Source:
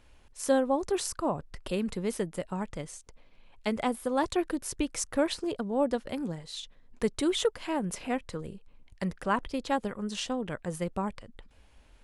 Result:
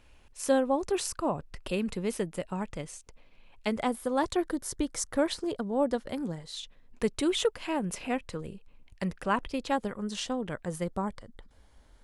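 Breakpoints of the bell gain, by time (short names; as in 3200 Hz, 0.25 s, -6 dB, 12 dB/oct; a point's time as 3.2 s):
bell 2600 Hz 0.26 oct
+4.5 dB
from 3.68 s -2.5 dB
from 4.37 s -12 dB
from 5.05 s -5 dB
from 6.6 s +4.5 dB
from 9.72 s -3 dB
from 10.85 s -14.5 dB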